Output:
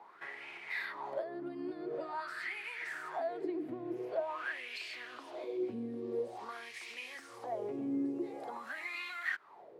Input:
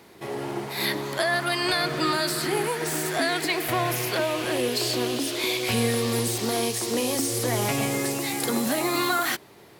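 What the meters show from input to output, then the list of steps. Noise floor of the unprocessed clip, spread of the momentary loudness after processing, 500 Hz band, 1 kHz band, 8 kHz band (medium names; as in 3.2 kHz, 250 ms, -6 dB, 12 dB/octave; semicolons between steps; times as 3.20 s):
-50 dBFS, 8 LU, -13.0 dB, -14.5 dB, -32.5 dB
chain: compression 6:1, threshold -32 dBFS, peak gain reduction 12 dB; wah-wah 0.47 Hz 280–2400 Hz, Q 6.2; trim +7 dB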